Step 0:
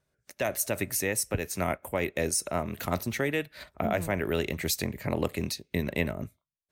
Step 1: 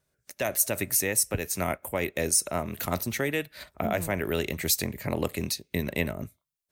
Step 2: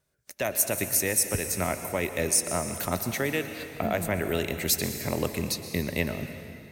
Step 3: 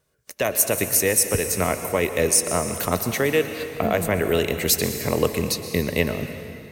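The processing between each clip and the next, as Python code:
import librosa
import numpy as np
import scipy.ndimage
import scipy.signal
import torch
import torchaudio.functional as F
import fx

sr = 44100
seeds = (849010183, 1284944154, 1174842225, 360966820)

y1 = fx.high_shelf(x, sr, hz=5600.0, db=7.5)
y2 = fx.rev_plate(y1, sr, seeds[0], rt60_s=2.6, hf_ratio=0.9, predelay_ms=105, drr_db=8.0)
y3 = fx.small_body(y2, sr, hz=(460.0, 1100.0, 2900.0), ring_ms=45, db=8)
y3 = F.gain(torch.from_numpy(y3), 5.0).numpy()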